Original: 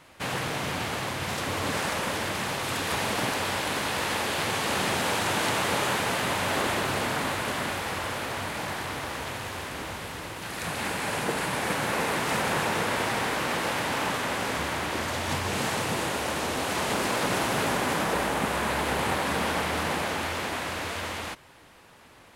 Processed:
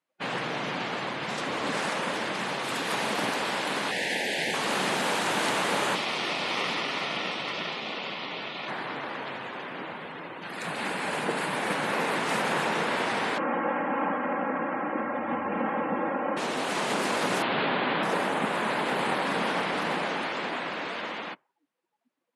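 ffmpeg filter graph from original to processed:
-filter_complex "[0:a]asettb=1/sr,asplit=3[a][b][c];[a]atrim=end=3.914[d];[b]atrim=start=3.91:end=4.54,asetpts=PTS-STARTPTS,afade=t=in:d=0.004:c=qsin,afade=t=out:st=0.626:d=0.004:c=qsin,asuperstop=centerf=1200:order=4:qfactor=1.2,equalizer=f=1.8k:w=2.3:g=7,bandreject=f=50:t=h:w=6,bandreject=f=100:t=h:w=6,bandreject=f=150:t=h:w=6,bandreject=f=200:t=h:w=6,bandreject=f=250:t=h:w=6,bandreject=f=300:t=h:w=6,bandreject=f=350:t=h:w=6[e];[c]atrim=start=4.536[f];[d][e]acrossfade=d=0.004:c1=hsin:c2=qsin[g];[g][f]acrossfade=d=0.004:c1=qsin:c2=hsin,asettb=1/sr,asplit=3[h][i][j];[h]atrim=end=5.954[k];[i]atrim=start=5.95:end=8.68,asetpts=PTS-STARTPTS,afade=t=in:d=0.004:c=qsin,afade=t=out:st=2.726:d=0.004:c=qsin,highpass=130,equalizer=f=1.7k:t=o:w=1.5:g=2.5,aeval=exprs='val(0)*sin(2*PI*1600*n/s)':c=same[l];[j]atrim=start=8.676[m];[k][l]acrossfade=d=0.004:c1=hsin:c2=qsin[n];[n][m]acrossfade=d=0.004:c1=qsin:c2=hsin,asettb=1/sr,asplit=3[o][p][q];[o]atrim=end=13.384[r];[p]atrim=start=13.38:end=16.37,asetpts=PTS-STARTPTS,afade=t=in:d=0.004:c=qsin,afade=t=out:st=2.986:d=0.004:c=qsin,lowpass=1.5k,aecho=1:1:3.7:0.78,atrim=end_sample=131859[s];[q]atrim=start=16.366[t];[r][s]acrossfade=d=0.004:c1=hsin:c2=qsin[u];[u][t]acrossfade=d=0.004:c1=qsin:c2=hsin,asettb=1/sr,asplit=3[v][w][x];[v]atrim=end=17.424[y];[w]atrim=start=17.42:end=18.03,asetpts=PTS-STARTPTS,afade=t=in:d=0.004:c=qsin,afade=t=out:st=0.606:d=0.004:c=qsin,lowpass=f=3.8k:w=0.5412,lowpass=f=3.8k:w=1.3066,aemphasis=mode=production:type=50fm[z];[x]atrim=start=18.026[aa];[y][z]acrossfade=d=0.004:c1=hsin:c2=qsin[ab];[ab][aa]acrossfade=d=0.004:c1=qsin:c2=hsin,highpass=f=160:w=0.5412,highpass=f=160:w=1.3066,afftdn=nr=33:nf=-41"

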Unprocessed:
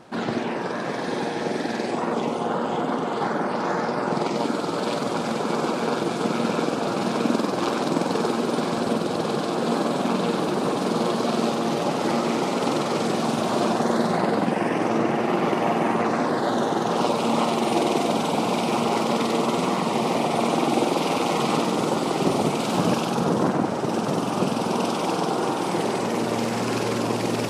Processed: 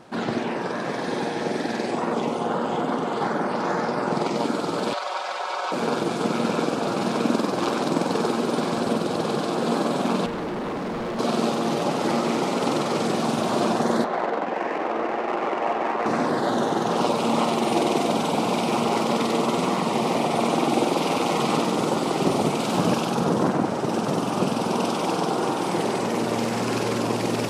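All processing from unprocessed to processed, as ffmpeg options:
-filter_complex "[0:a]asettb=1/sr,asplit=3[a][b][c];[a]atrim=end=4.934[d];[b]atrim=start=4.93:end=5.72,asetpts=PTS-STARTPTS,afade=t=in:d=0.004:c=qsin,afade=t=out:st=0.786:d=0.004:c=qsin,acrossover=split=6000[e][f];[f]acompressor=threshold=-59dB:ratio=4:attack=1:release=60[g];[e][g]amix=inputs=2:normalize=0,highpass=f=640:w=0.5412,highpass=f=640:w=1.3066,aecho=1:1:5.4:0.62,atrim=end_sample=34839[h];[c]atrim=start=5.716[i];[d][h]acrossfade=d=0.004:c1=hsin:c2=qsin[j];[j][i]acrossfade=d=0.004:c1=qsin:c2=hsin,asettb=1/sr,asplit=3[k][l][m];[k]atrim=end=10.264[n];[l]atrim=start=10.26:end=11.19,asetpts=PTS-STARTPTS,afade=t=in:d=0.004:c=qsin,afade=t=out:st=0.926:d=0.004:c=qsin,lowpass=f=1.8k:p=1,volume=26.5dB,asoftclip=hard,volume=-26.5dB[o];[m]atrim=start=11.186[p];[n][o]acrossfade=d=0.004:c1=hsin:c2=qsin[q];[q][p]acrossfade=d=0.004:c1=qsin:c2=hsin,asettb=1/sr,asplit=3[r][s][t];[r]atrim=end=14.044[u];[s]atrim=start=14.04:end=16.06,asetpts=PTS-STARTPTS,afade=t=in:d=0.004:c=qsin,afade=t=out:st=2.016:d=0.004:c=qsin,highpass=440,lowpass=3k,adynamicsmooth=sensitivity=4:basefreq=1.9k[v];[t]atrim=start=16.056[w];[u][v]acrossfade=d=0.004:c1=hsin:c2=qsin[x];[x][w]acrossfade=d=0.004:c1=qsin:c2=hsin"

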